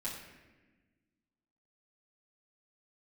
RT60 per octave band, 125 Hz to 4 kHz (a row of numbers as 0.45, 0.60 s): 1.8, 2.1, 1.4, 1.1, 1.3, 0.85 s